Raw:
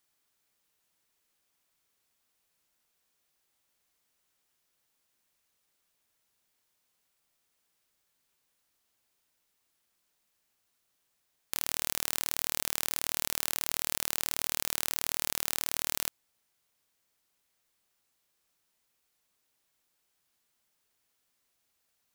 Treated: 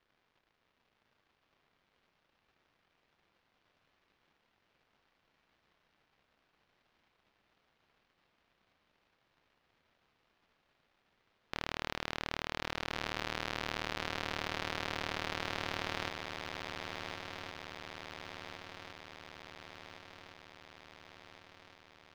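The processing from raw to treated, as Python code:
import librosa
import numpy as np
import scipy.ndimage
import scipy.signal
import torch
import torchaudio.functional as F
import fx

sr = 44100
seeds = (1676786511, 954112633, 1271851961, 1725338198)

y = fx.cycle_switch(x, sr, every=3, mode='inverted')
y = fx.high_shelf(y, sr, hz=9100.0, db=-9.0)
y = fx.dmg_crackle(y, sr, seeds[0], per_s=330.0, level_db=-58.0)
y = fx.air_absorb(y, sr, metres=270.0)
y = fx.echo_swing(y, sr, ms=1413, ratio=3, feedback_pct=60, wet_db=-6.5)
y = y * librosa.db_to_amplitude(3.5)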